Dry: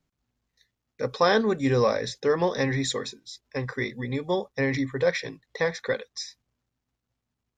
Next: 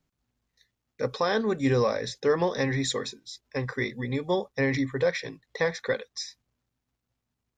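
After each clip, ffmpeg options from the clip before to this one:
-af "alimiter=limit=0.188:level=0:latency=1:release=413"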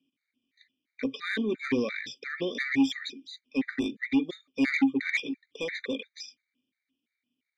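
-filter_complex "[0:a]asplit=3[s0][s1][s2];[s0]bandpass=f=270:t=q:w=8,volume=1[s3];[s1]bandpass=f=2290:t=q:w=8,volume=0.501[s4];[s2]bandpass=f=3010:t=q:w=8,volume=0.355[s5];[s3][s4][s5]amix=inputs=3:normalize=0,asplit=2[s6][s7];[s7]highpass=f=720:p=1,volume=11.2,asoftclip=type=tanh:threshold=0.133[s8];[s6][s8]amix=inputs=2:normalize=0,lowpass=f=5900:p=1,volume=0.501,afftfilt=real='re*gt(sin(2*PI*2.9*pts/sr)*(1-2*mod(floor(b*sr/1024/1200),2)),0)':imag='im*gt(sin(2*PI*2.9*pts/sr)*(1-2*mod(floor(b*sr/1024/1200),2)),0)':win_size=1024:overlap=0.75,volume=1.88"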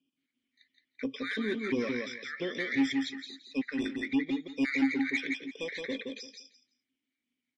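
-filter_complex "[0:a]asplit=2[s0][s1];[s1]aecho=0:1:170|340|510:0.631|0.12|0.0228[s2];[s0][s2]amix=inputs=2:normalize=0,volume=0.668" -ar 24000 -c:a libmp3lame -b:a 40k

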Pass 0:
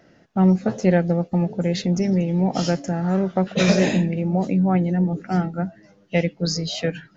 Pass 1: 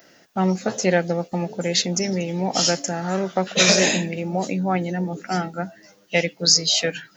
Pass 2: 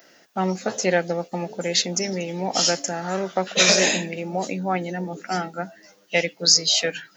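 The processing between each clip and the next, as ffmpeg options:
-af "aemphasis=mode=production:type=riaa,volume=1.41"
-af "highpass=f=280:p=1"

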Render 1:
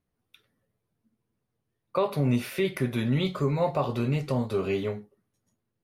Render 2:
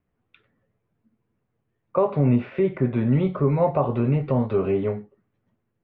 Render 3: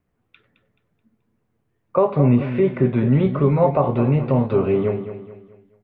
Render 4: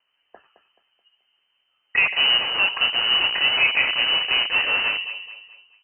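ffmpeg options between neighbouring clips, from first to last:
-filter_complex "[0:a]lowpass=f=2700:w=0.5412,lowpass=f=2700:w=1.3066,acrossover=split=820|1100[s0][s1][s2];[s2]acompressor=threshold=0.00316:ratio=6[s3];[s0][s1][s3]amix=inputs=3:normalize=0,volume=1.88"
-af "aecho=1:1:215|430|645|860:0.282|0.11|0.0429|0.0167,volume=1.5"
-filter_complex "[0:a]asplit=2[s0][s1];[s1]aeval=exprs='(mod(8.41*val(0)+1,2)-1)/8.41':c=same,volume=0.473[s2];[s0][s2]amix=inputs=2:normalize=0,crystalizer=i=8:c=0,lowpass=f=2600:t=q:w=0.5098,lowpass=f=2600:t=q:w=0.6013,lowpass=f=2600:t=q:w=0.9,lowpass=f=2600:t=q:w=2.563,afreqshift=-3100,volume=0.596"

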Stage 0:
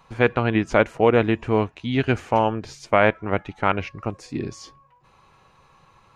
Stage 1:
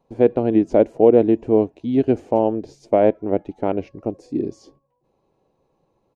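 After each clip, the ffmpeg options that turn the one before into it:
-af "firequalizer=gain_entry='entry(110,0);entry(290,13);entry(660,8);entry(1200,-12);entry(4700,-5)':delay=0.05:min_phase=1,agate=range=0.398:threshold=0.00398:ratio=16:detection=peak,volume=0.531"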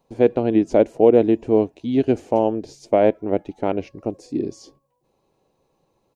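-af "highshelf=f=2500:g=9.5,volume=0.891"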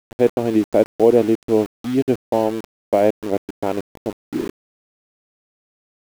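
-af "aeval=exprs='val(0)*gte(abs(val(0)),0.0376)':c=same"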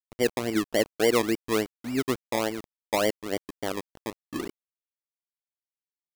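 -af "acrusher=samples=24:mix=1:aa=0.000001:lfo=1:lforange=14.4:lforate=3.5,volume=0.355"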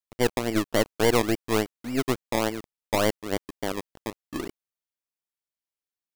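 -af "aeval=exprs='0.299*(cos(1*acos(clip(val(0)/0.299,-1,1)))-cos(1*PI/2))+0.0531*(cos(4*acos(clip(val(0)/0.299,-1,1)))-cos(4*PI/2))':c=same"

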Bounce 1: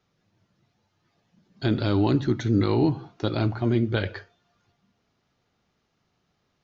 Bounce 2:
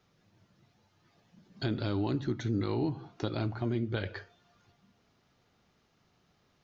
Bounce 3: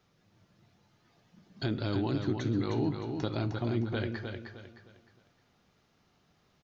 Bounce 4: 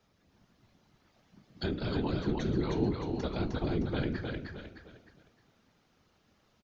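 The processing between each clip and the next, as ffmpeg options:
-af "acompressor=threshold=0.01:ratio=2,volume=1.33"
-af "aecho=1:1:308|616|924|1232:0.501|0.17|0.0579|0.0197"
-af "afftfilt=real='hypot(re,im)*cos(2*PI*random(0))':imag='hypot(re,im)*sin(2*PI*random(1))':win_size=512:overlap=0.75,aecho=1:1:309:0.473,volume=1.78"

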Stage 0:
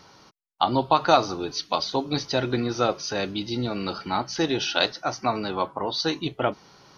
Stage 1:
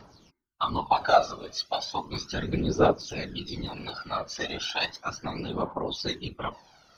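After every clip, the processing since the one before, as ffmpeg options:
-af "bandreject=f=303:t=h:w=4,bandreject=f=606:t=h:w=4,bandreject=f=909:t=h:w=4,bandreject=f=1212:t=h:w=4,bandreject=f=1515:t=h:w=4,bandreject=f=1818:t=h:w=4,bandreject=f=2121:t=h:w=4,aphaser=in_gain=1:out_gain=1:delay=1.8:decay=0.76:speed=0.35:type=triangular,afftfilt=real='hypot(re,im)*cos(2*PI*random(0))':imag='hypot(re,im)*sin(2*PI*random(1))':win_size=512:overlap=0.75,volume=0.794"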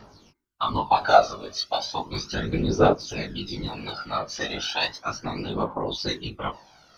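-af "flanger=delay=18.5:depth=2.3:speed=1.6,volume=2"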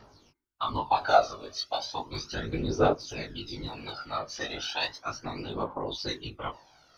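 -af "equalizer=f=190:t=o:w=0.23:g=-12,volume=0.562"

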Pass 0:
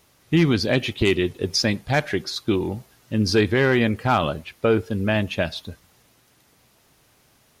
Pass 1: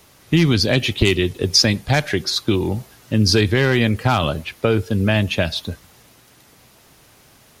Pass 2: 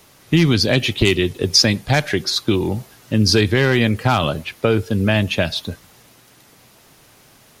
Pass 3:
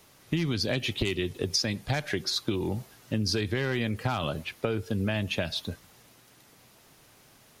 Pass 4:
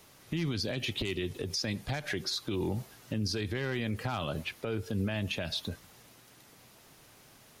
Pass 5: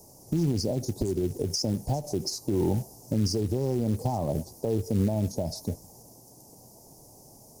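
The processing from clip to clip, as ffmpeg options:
-filter_complex "[0:a]acrossover=split=130|3000[s0][s1][s2];[s1]acompressor=threshold=0.0316:ratio=2[s3];[s0][s3][s2]amix=inputs=3:normalize=0,volume=2.66"
-af "equalizer=f=67:t=o:w=0.53:g=-8,volume=1.12"
-af "acompressor=threshold=0.141:ratio=5,volume=0.422"
-af "alimiter=limit=0.0668:level=0:latency=1:release=73"
-af "asuperstop=centerf=2200:order=12:qfactor=0.52,acrusher=bits=6:mode=log:mix=0:aa=0.000001,volume=2.24"

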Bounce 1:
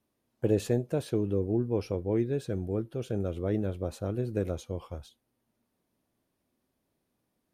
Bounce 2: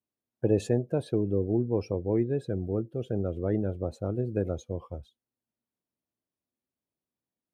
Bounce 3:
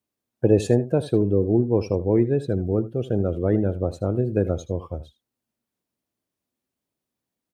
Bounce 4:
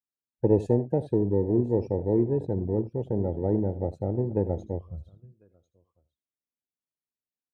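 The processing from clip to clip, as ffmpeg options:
-af "highpass=50,afftdn=nr=17:nf=-45,volume=1.19"
-af "aecho=1:1:78:0.158,volume=2.24"
-af "aeval=exprs='0.596*(cos(1*acos(clip(val(0)/0.596,-1,1)))-cos(1*PI/2))+0.0119*(cos(6*acos(clip(val(0)/0.596,-1,1)))-cos(6*PI/2))':c=same,aecho=1:1:1048:0.126,afwtdn=0.0631,volume=0.631"

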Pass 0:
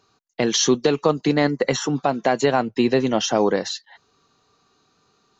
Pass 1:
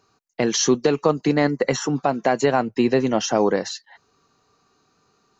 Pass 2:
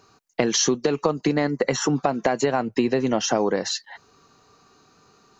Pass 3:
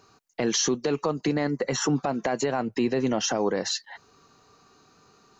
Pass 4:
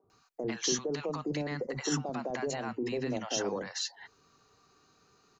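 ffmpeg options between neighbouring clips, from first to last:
-af "equalizer=f=3500:t=o:w=0.46:g=-7"
-af "acompressor=threshold=0.0562:ratio=6,volume=2.24"
-af "alimiter=limit=0.2:level=0:latency=1:release=12,volume=0.841"
-filter_complex "[0:a]acrossover=split=240|780[s0][s1][s2];[s0]adelay=40[s3];[s2]adelay=100[s4];[s3][s1][s4]amix=inputs=3:normalize=0,volume=0.501"

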